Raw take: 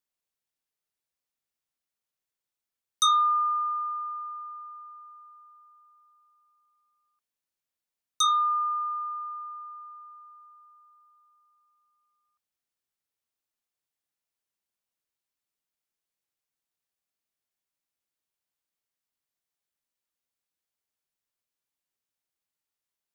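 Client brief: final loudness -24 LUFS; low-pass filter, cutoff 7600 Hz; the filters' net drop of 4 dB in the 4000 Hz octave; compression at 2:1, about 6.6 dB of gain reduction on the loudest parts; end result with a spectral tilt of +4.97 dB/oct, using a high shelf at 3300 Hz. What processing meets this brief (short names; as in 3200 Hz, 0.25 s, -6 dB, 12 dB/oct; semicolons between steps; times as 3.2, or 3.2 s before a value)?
LPF 7600 Hz; high shelf 3300 Hz +5 dB; bell 4000 Hz -7 dB; compressor 2:1, threshold -32 dBFS; gain +8 dB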